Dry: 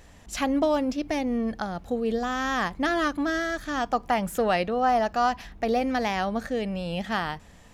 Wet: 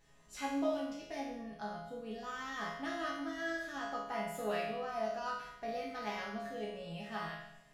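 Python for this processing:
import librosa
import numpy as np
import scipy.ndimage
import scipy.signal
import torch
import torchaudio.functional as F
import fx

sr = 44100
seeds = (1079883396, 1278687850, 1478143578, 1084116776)

y = fx.resonator_bank(x, sr, root=49, chord='minor', decay_s=0.78)
y = fx.rev_fdn(y, sr, rt60_s=0.86, lf_ratio=1.0, hf_ratio=0.4, size_ms=14.0, drr_db=7.5)
y = F.gain(torch.from_numpy(y), 6.5).numpy()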